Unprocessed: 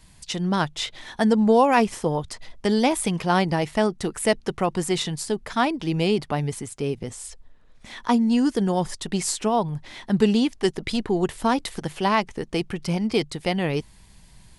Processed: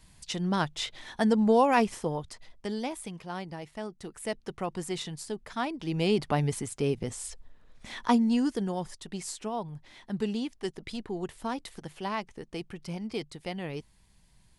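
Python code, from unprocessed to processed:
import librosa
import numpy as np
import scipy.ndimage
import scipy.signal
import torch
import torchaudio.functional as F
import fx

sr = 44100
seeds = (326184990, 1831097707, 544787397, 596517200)

y = fx.gain(x, sr, db=fx.line((1.81, -5.0), (3.25, -17.0), (3.77, -17.0), (4.64, -10.0), (5.68, -10.0), (6.28, -1.5), (7.97, -1.5), (8.96, -12.0)))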